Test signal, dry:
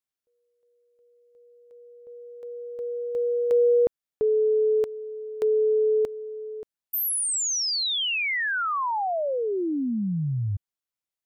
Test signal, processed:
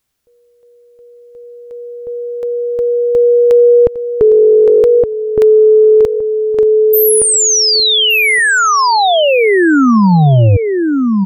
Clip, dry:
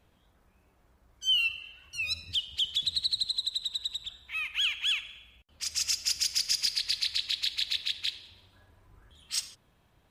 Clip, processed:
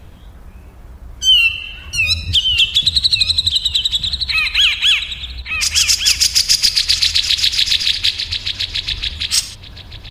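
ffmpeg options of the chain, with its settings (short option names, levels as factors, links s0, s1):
-filter_complex "[0:a]lowshelf=f=150:g=11.5,asplit=2[s0][s1];[s1]adelay=1167,lowpass=f=3300:p=1,volume=0.562,asplit=2[s2][s3];[s3]adelay=1167,lowpass=f=3300:p=1,volume=0.18,asplit=2[s4][s5];[s5]adelay=1167,lowpass=f=3300:p=1,volume=0.18[s6];[s0][s2][s4][s6]amix=inputs=4:normalize=0,apsyclip=7.94,asplit=2[s7][s8];[s8]acompressor=threshold=0.112:ratio=6:release=408:detection=rms,volume=1.26[s9];[s7][s9]amix=inputs=2:normalize=0,volume=0.562"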